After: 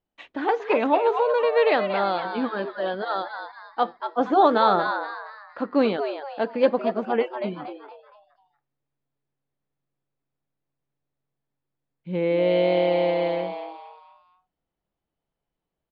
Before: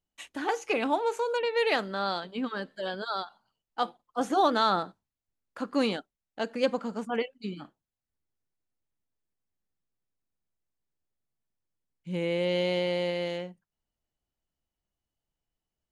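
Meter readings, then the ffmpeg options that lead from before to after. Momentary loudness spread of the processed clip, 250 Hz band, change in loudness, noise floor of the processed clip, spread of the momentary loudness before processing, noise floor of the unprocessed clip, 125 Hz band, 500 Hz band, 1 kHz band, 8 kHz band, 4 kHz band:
15 LU, +5.5 dB, +6.5 dB, -85 dBFS, 14 LU, under -85 dBFS, +3.5 dB, +8.0 dB, +7.0 dB, under -15 dB, -0.5 dB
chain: -filter_complex "[0:a]lowpass=f=4k:w=0.5412,lowpass=f=4k:w=1.3066,equalizer=f=520:w=0.43:g=7.5,bandreject=f=2.9k:w=22,asplit=2[a][b];[b]asplit=4[c][d][e][f];[c]adelay=234,afreqshift=140,volume=-8dB[g];[d]adelay=468,afreqshift=280,volume=-16.9dB[h];[e]adelay=702,afreqshift=420,volume=-25.7dB[i];[f]adelay=936,afreqshift=560,volume=-34.6dB[j];[g][h][i][j]amix=inputs=4:normalize=0[k];[a][k]amix=inputs=2:normalize=0"

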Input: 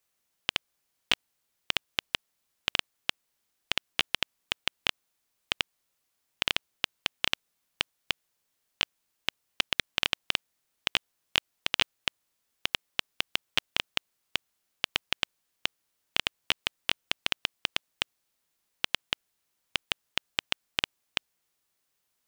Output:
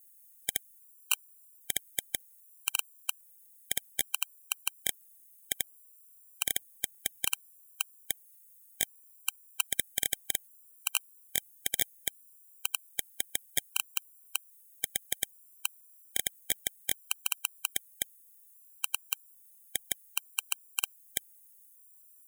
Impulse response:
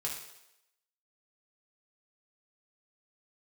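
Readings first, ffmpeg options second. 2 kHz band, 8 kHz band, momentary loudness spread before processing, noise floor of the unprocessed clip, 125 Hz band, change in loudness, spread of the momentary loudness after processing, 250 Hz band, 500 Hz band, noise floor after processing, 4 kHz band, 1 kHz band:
-7.5 dB, +11.5 dB, 6 LU, -79 dBFS, -6.5 dB, -2.0 dB, 6 LU, -6.5 dB, -6.5 dB, -59 dBFS, -8.0 dB, -8.5 dB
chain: -af "aexciter=amount=13.9:drive=8.3:freq=7.1k,afftfilt=real='re*gt(sin(2*PI*0.62*pts/sr)*(1-2*mod(floor(b*sr/1024/780),2)),0)':imag='im*gt(sin(2*PI*0.62*pts/sr)*(1-2*mod(floor(b*sr/1024/780),2)),0)':win_size=1024:overlap=0.75,volume=-4.5dB"

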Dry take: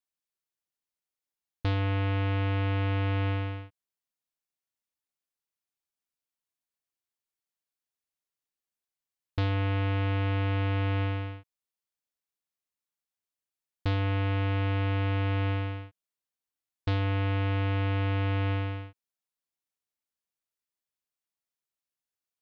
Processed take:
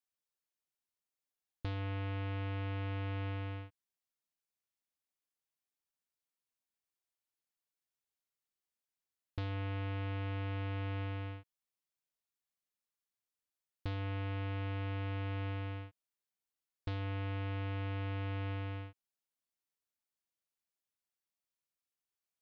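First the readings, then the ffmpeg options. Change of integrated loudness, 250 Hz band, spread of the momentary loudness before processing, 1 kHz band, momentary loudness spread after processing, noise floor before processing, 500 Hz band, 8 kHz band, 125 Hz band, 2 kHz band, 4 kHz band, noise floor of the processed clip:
-10.5 dB, -10.5 dB, 8 LU, -10.5 dB, 8 LU, under -85 dBFS, -10.5 dB, n/a, -10.5 dB, -10.5 dB, -10.5 dB, under -85 dBFS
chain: -af "acompressor=threshold=-34dB:ratio=6,volume=-3.5dB"

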